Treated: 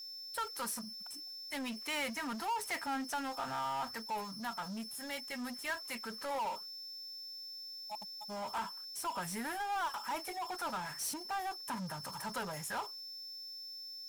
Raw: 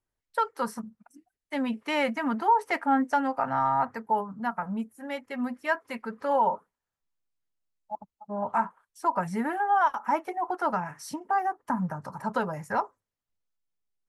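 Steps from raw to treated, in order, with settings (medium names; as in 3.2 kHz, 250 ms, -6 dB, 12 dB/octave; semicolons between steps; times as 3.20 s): pre-emphasis filter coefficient 0.9; whistle 5.3 kHz -60 dBFS; power-law waveshaper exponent 0.5; trim -1.5 dB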